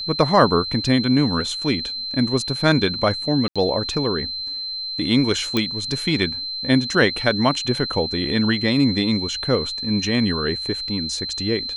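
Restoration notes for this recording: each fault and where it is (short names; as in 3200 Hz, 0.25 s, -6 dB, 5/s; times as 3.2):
tone 4100 Hz -26 dBFS
3.48–3.56 gap 76 ms
5.57 pop -7 dBFS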